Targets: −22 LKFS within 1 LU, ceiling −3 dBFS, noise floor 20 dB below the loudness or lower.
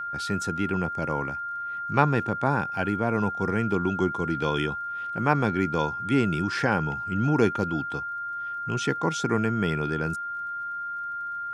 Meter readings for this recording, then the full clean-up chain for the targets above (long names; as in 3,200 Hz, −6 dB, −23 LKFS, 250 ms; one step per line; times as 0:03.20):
crackle rate 28 per second; interfering tone 1,400 Hz; level of the tone −30 dBFS; integrated loudness −27.0 LKFS; sample peak −4.0 dBFS; target loudness −22.0 LKFS
→ click removal
notch filter 1,400 Hz, Q 30
level +5 dB
brickwall limiter −3 dBFS